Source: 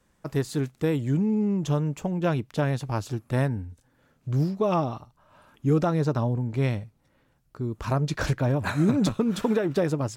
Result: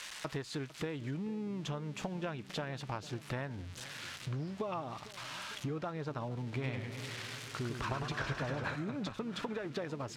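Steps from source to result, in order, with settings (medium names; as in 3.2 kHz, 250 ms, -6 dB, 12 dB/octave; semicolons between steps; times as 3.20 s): zero-crossing glitches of -30.5 dBFS; low-pass 3.3 kHz 12 dB/octave; tilt shelf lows -6 dB, about 660 Hz; compression 12:1, threshold -38 dBFS, peak gain reduction 18 dB; filtered feedback delay 452 ms, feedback 71%, low-pass 1.1 kHz, level -16.5 dB; 6.45–8.76 s: modulated delay 101 ms, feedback 78%, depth 151 cents, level -6.5 dB; trim +2.5 dB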